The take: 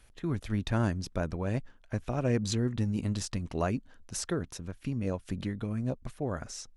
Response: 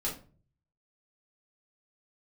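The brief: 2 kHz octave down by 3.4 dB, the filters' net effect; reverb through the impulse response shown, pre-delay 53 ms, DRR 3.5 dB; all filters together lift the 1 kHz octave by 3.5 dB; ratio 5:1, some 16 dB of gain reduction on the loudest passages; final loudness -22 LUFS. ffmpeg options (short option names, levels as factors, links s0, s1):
-filter_complex "[0:a]equalizer=f=1000:t=o:g=7,equalizer=f=2000:t=o:g=-8,acompressor=threshold=0.00891:ratio=5,asplit=2[s0][s1];[1:a]atrim=start_sample=2205,adelay=53[s2];[s1][s2]afir=irnorm=-1:irlink=0,volume=0.422[s3];[s0][s3]amix=inputs=2:normalize=0,volume=11.2"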